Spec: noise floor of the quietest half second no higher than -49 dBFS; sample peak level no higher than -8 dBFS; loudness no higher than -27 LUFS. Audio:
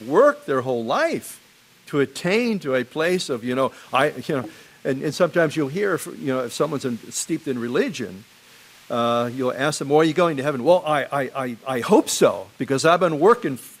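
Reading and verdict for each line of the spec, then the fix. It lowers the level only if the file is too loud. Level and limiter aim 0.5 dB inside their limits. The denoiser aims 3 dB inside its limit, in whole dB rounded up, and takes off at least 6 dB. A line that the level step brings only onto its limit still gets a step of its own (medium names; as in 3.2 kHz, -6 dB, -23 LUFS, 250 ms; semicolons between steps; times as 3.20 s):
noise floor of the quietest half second -53 dBFS: pass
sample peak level -4.0 dBFS: fail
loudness -21.5 LUFS: fail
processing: trim -6 dB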